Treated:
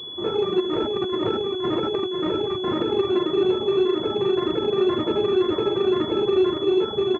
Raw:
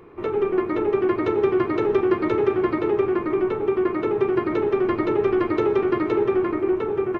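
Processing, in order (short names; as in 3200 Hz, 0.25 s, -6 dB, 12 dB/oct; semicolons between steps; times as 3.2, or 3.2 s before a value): HPF 57 Hz; air absorption 230 m; doubler 43 ms -9 dB; flutter echo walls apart 6.5 m, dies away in 0.59 s; limiter -12 dBFS, peak gain reduction 7.5 dB; reverb removal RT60 0.74 s; flange 2 Hz, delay 0.1 ms, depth 6.7 ms, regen -61%; 0.6–2.86 negative-ratio compressor -29 dBFS, ratio -1; pulse-width modulation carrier 3400 Hz; gain +4.5 dB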